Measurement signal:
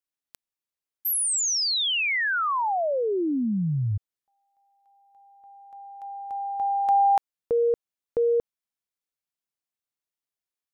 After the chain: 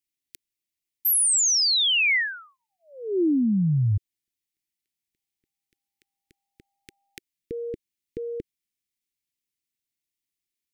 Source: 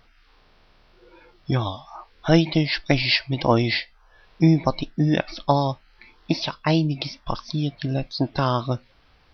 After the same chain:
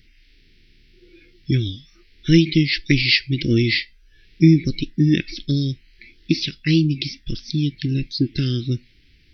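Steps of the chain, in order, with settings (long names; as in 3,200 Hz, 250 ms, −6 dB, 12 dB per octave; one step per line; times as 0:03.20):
elliptic band-stop filter 360–2,000 Hz, stop band 60 dB
level +4.5 dB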